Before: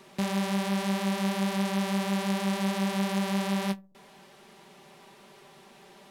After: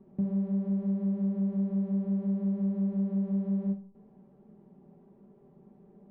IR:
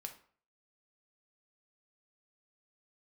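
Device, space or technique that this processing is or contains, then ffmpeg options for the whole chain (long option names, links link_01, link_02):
television next door: -filter_complex "[0:a]acompressor=threshold=-30dB:ratio=6,lowpass=290[link_01];[1:a]atrim=start_sample=2205[link_02];[link_01][link_02]afir=irnorm=-1:irlink=0,volume=7.5dB"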